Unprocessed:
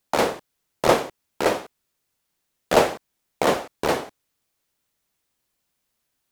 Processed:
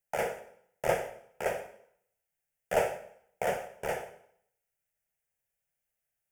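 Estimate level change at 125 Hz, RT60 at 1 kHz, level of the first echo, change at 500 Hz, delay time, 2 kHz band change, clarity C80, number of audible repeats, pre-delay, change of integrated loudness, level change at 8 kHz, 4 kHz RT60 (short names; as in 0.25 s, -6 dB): -10.5 dB, 0.70 s, none, -9.5 dB, none, -9.0 dB, 14.5 dB, none, 4 ms, -10.5 dB, -11.5 dB, 0.65 s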